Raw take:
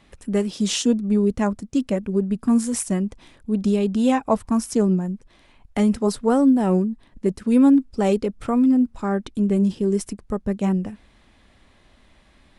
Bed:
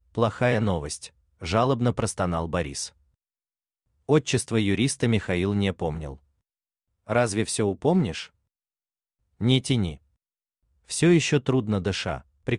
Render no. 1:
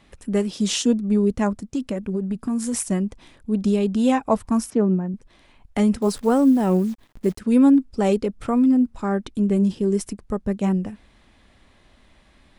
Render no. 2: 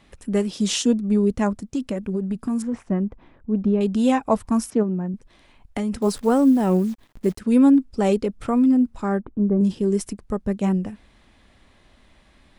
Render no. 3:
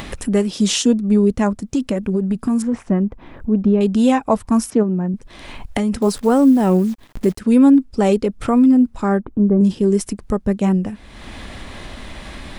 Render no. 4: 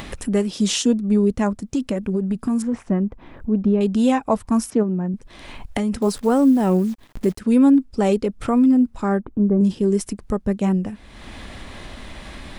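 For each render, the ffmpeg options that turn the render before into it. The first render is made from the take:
ffmpeg -i in.wav -filter_complex "[0:a]asettb=1/sr,asplit=3[link_01][link_02][link_03];[link_01]atrim=end=1.674[link_04];[link_02]atrim=start=1.67:end=2.77,asetpts=PTS-STARTPTS,afade=type=in:duration=0.004:curve=qsin,afade=type=out:start_time=1.096:duration=0.004:curve=qsin,acompressor=threshold=-20dB:ratio=6:attack=3.2:release=140:knee=1:detection=peak[link_05];[link_03]atrim=start=2.766[link_06];[link_04][link_05]acrossfade=duration=0.004:curve1=hsin:curve2=qsin[link_07];[link_07][link_06]acrossfade=duration=0.004:curve1=qsin:curve2=hsin,asettb=1/sr,asplit=3[link_08][link_09][link_10];[link_08]atrim=end=4.704[link_11];[link_09]atrim=start=4.7:end=5.14,asetpts=PTS-STARTPTS,afade=type=in:duration=0.004:curve=qsin,afade=type=out:start_time=0.436:duration=0.004:curve=qsin,highpass=120,lowpass=2200[link_12];[link_10]atrim=start=5.136[link_13];[link_11][link_12]acrossfade=duration=0.004:curve1=hsin:curve2=qsin[link_14];[link_14][link_13]acrossfade=duration=0.004:curve1=qsin:curve2=hsin,asettb=1/sr,asplit=3[link_15][link_16][link_17];[link_15]atrim=end=6.024[link_18];[link_16]atrim=start=6.02:end=7.39,asetpts=PTS-STARTPTS,afade=type=in:duration=0.004:curve=qsin,afade=type=out:start_time=1.366:duration=0.004:curve=qsin,acrusher=bits=8:dc=4:mix=0:aa=0.000001[link_19];[link_17]atrim=start=7.386[link_20];[link_18][link_19]acrossfade=duration=0.004:curve1=hsin:curve2=qsin[link_21];[link_21][link_20]acrossfade=duration=0.004:curve1=qsin:curve2=hsin" out.wav
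ffmpeg -i in.wav -filter_complex "[0:a]asettb=1/sr,asplit=3[link_01][link_02][link_03];[link_01]atrim=end=2.624[link_04];[link_02]atrim=start=2.62:end=3.81,asetpts=PTS-STARTPTS,afade=type=in:duration=0.004:curve=qsin,afade=type=out:start_time=1.186:duration=0.004:curve=qsin,lowpass=1500[link_05];[link_03]atrim=start=3.806[link_06];[link_04][link_05]acrossfade=duration=0.004:curve1=hsin:curve2=qsin[link_07];[link_07][link_06]acrossfade=duration=0.004:curve1=qsin:curve2=hsin,asplit=3[link_08][link_09][link_10];[link_08]afade=type=out:start_time=4.82:duration=0.02[link_11];[link_09]acompressor=threshold=-21dB:ratio=6:attack=3.2:release=140:knee=1:detection=peak,afade=type=in:start_time=4.82:duration=0.02,afade=type=out:start_time=5.92:duration=0.02[link_12];[link_10]afade=type=in:start_time=5.92:duration=0.02[link_13];[link_11][link_12][link_13]amix=inputs=3:normalize=0,asettb=1/sr,asplit=3[link_14][link_15][link_16];[link_14]atrim=end=9.194[link_17];[link_15]atrim=start=9.19:end=9.61,asetpts=PTS-STARTPTS,afade=type=in:duration=0.004:curve=qsin,afade=type=out:start_time=0.416:duration=0.004:curve=qsin,lowpass=frequency=1300:width=0.5412,lowpass=frequency=1300:width=1.3066[link_18];[link_16]atrim=start=9.606[link_19];[link_17][link_18]acrossfade=duration=0.004:curve1=hsin:curve2=qsin[link_20];[link_20][link_19]acrossfade=duration=0.004:curve1=qsin:curve2=hsin" out.wav
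ffmpeg -i in.wav -filter_complex "[0:a]asplit=2[link_01][link_02];[link_02]alimiter=limit=-14dB:level=0:latency=1:release=363,volume=0dB[link_03];[link_01][link_03]amix=inputs=2:normalize=0,acompressor=mode=upward:threshold=-18dB:ratio=2.5" out.wav
ffmpeg -i in.wav -af "volume=-3dB" out.wav

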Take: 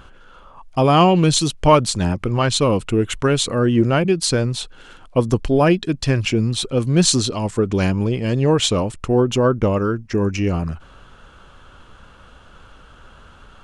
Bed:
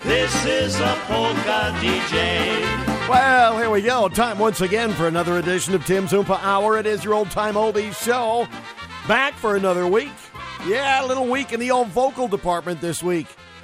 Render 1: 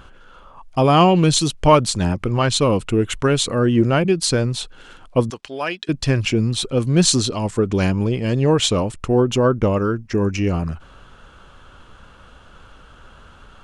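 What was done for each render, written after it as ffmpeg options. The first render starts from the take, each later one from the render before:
ffmpeg -i in.wav -filter_complex "[0:a]asettb=1/sr,asplit=3[link_01][link_02][link_03];[link_01]atrim=end=5.304[link_04];[link_02]atrim=start=5.3:end=5.89,asetpts=PTS-STARTPTS,afade=type=in:duration=0.004:curve=qsin,afade=type=out:start_time=0.586:duration=0.004:curve=qsin,bandpass=frequency=3200:width_type=q:width=0.59[link_05];[link_03]atrim=start=5.886[link_06];[link_04][link_05]acrossfade=duration=0.004:curve1=hsin:curve2=qsin[link_07];[link_07][link_06]acrossfade=duration=0.004:curve1=qsin:curve2=hsin" out.wav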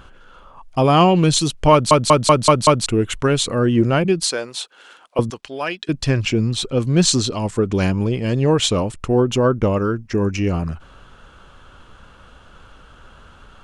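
ffmpeg -i in.wav -filter_complex "[0:a]asettb=1/sr,asplit=3[link_01][link_02][link_03];[link_01]atrim=end=4.244[link_04];[link_02]atrim=start=4.24:end=5.19,asetpts=PTS-STARTPTS,afade=type=in:duration=0.004:curve=qsin,afade=type=out:start_time=0.946:duration=0.004:curve=qsin,highpass=520[link_05];[link_03]atrim=start=5.186[link_06];[link_04][link_05]acrossfade=duration=0.004:curve1=hsin:curve2=qsin[link_07];[link_07][link_06]acrossfade=duration=0.004:curve1=qsin:curve2=hsin,asettb=1/sr,asplit=3[link_08][link_09][link_10];[link_08]atrim=end=6.084[link_11];[link_09]atrim=start=6.08:end=7.31,asetpts=PTS-STARTPTS,afade=type=in:duration=0.004:curve=qsin,afade=type=out:start_time=1.226:duration=0.004:curve=qsin,equalizer=frequency=9800:width=6.5:gain=-10.5[link_12];[link_10]atrim=start=7.306[link_13];[link_11][link_12]acrossfade=duration=0.004:curve1=hsin:curve2=qsin[link_14];[link_14][link_13]acrossfade=duration=0.004:curve1=qsin:curve2=hsin,asplit=7[link_15][link_16][link_17][link_18][link_19][link_20][link_21];[link_15]atrim=end=1.912[link_22];[link_16]atrim=start=1.718:end=1.912[link_23];[link_17]atrim=start=1.718:end=1.912[link_24];[link_18]atrim=start=1.718:end=1.912[link_25];[link_19]atrim=start=1.718:end=1.912[link_26];[link_20]atrim=start=1.718:end=1.912[link_27];[link_21]atrim=start=2.858[link_28];[link_22][link_23]acrossfade=duration=0.004:curve1=hsin:curve2=hsin[link_29];[link_29][link_24]acrossfade=duration=0.004:curve1=hsin:curve2=hsin[link_30];[link_30][link_25]acrossfade=duration=0.004:curve1=hsin:curve2=hsin[link_31];[link_31][link_26]acrossfade=duration=0.004:curve1=hsin:curve2=hsin[link_32];[link_32][link_27]acrossfade=duration=0.004:curve1=hsin:curve2=hsin[link_33];[link_33][link_28]acrossfade=duration=0.004:curve1=hsin:curve2=hsin" out.wav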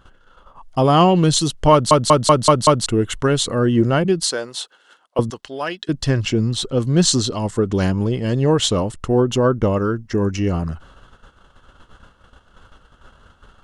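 ffmpeg -i in.wav -af "agate=range=-10dB:threshold=-43dB:ratio=16:detection=peak,bandreject=frequency=2400:width=5.3" out.wav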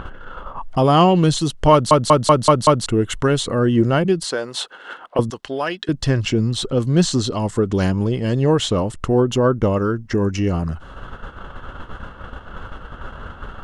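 ffmpeg -i in.wav -filter_complex "[0:a]acrossover=split=2800[link_01][link_02];[link_01]acompressor=mode=upward:threshold=-17dB:ratio=2.5[link_03];[link_02]alimiter=limit=-16.5dB:level=0:latency=1:release=267[link_04];[link_03][link_04]amix=inputs=2:normalize=0" out.wav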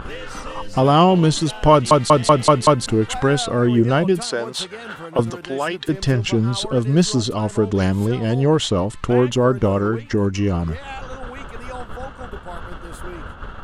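ffmpeg -i in.wav -i bed.wav -filter_complex "[1:a]volume=-15.5dB[link_01];[0:a][link_01]amix=inputs=2:normalize=0" out.wav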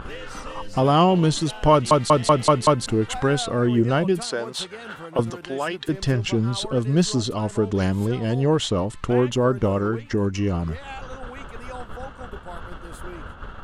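ffmpeg -i in.wav -af "volume=-3.5dB" out.wav

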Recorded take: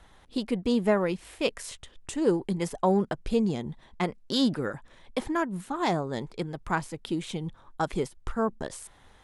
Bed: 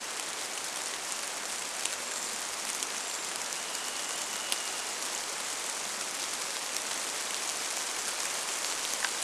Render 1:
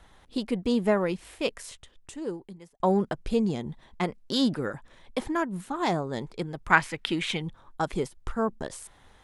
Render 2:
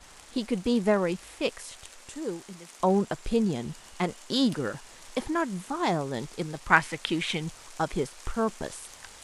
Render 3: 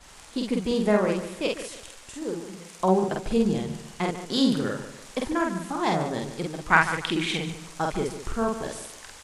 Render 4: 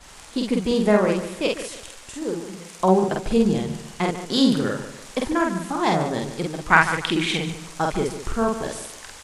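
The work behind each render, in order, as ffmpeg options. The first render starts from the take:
ffmpeg -i in.wav -filter_complex "[0:a]asettb=1/sr,asplit=3[link_01][link_02][link_03];[link_01]atrim=end=6.704[link_04];[link_02]atrim=start=6.7:end=7.42,asetpts=PTS-STARTPTS,afade=type=in:duration=0.004:curve=qsin,afade=type=out:start_time=0.716:duration=0.004:curve=qsin,equalizer=frequency=2100:width=0.71:gain=15[link_05];[link_03]atrim=start=7.416[link_06];[link_04][link_05]acrossfade=duration=0.004:curve1=hsin:curve2=qsin[link_07];[link_07][link_06]acrossfade=duration=0.004:curve1=qsin:curve2=hsin,asplit=2[link_08][link_09];[link_08]atrim=end=2.8,asetpts=PTS-STARTPTS,afade=type=out:start_time=1.24:duration=1.56[link_10];[link_09]atrim=start=2.8,asetpts=PTS-STARTPTS,afade=type=in:duration=0.004:curve=hsin[link_11];[link_10][link_11]concat=n=2:v=0:a=1" out.wav
ffmpeg -i in.wav -i bed.wav -filter_complex "[1:a]volume=-15.5dB[link_01];[0:a][link_01]amix=inputs=2:normalize=0" out.wav
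ffmpeg -i in.wav -filter_complex "[0:a]asplit=2[link_01][link_02];[link_02]adelay=48,volume=-2dB[link_03];[link_01][link_03]amix=inputs=2:normalize=0,asplit=2[link_04][link_05];[link_05]adelay=146,lowpass=frequency=4200:poles=1,volume=-11dB,asplit=2[link_06][link_07];[link_07]adelay=146,lowpass=frequency=4200:poles=1,volume=0.34,asplit=2[link_08][link_09];[link_09]adelay=146,lowpass=frequency=4200:poles=1,volume=0.34,asplit=2[link_10][link_11];[link_11]adelay=146,lowpass=frequency=4200:poles=1,volume=0.34[link_12];[link_04][link_06][link_08][link_10][link_12]amix=inputs=5:normalize=0" out.wav
ffmpeg -i in.wav -af "volume=4dB,alimiter=limit=-1dB:level=0:latency=1" out.wav

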